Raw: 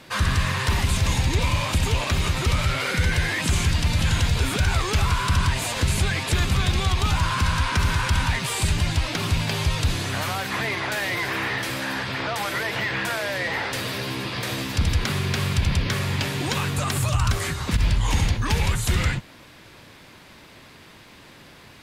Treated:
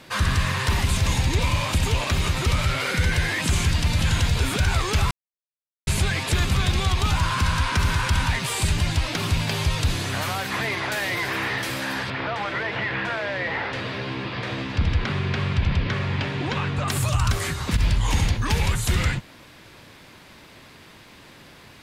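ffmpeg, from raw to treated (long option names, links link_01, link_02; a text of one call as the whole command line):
ffmpeg -i in.wav -filter_complex "[0:a]asettb=1/sr,asplit=3[link_01][link_02][link_03];[link_01]atrim=end=12.104[link_04];[link_02]atrim=start=12.1:end=16.88,asetpts=PTS-STARTPTS,afade=type=in:duration=0.004:curve=qsin,afade=type=out:start_time=4.776:duration=0.004:curve=qsin,lowpass=3100[link_05];[link_03]atrim=start=16.876[link_06];[link_04][link_05]acrossfade=duration=0.004:curve1=hsin:curve2=qsin[link_07];[link_07][link_06]acrossfade=duration=0.004:curve1=qsin:curve2=hsin,asplit=3[link_08][link_09][link_10];[link_08]atrim=end=5.11,asetpts=PTS-STARTPTS,afade=type=out:start_time=5.106:duration=0.004:curve=hsin[link_11];[link_09]atrim=start=5.11:end=5.87,asetpts=PTS-STARTPTS,volume=0[link_12];[link_10]atrim=start=5.87,asetpts=PTS-STARTPTS,afade=type=in:duration=0.004:curve=hsin[link_13];[link_11][link_12][link_13]concat=n=3:v=0:a=1" out.wav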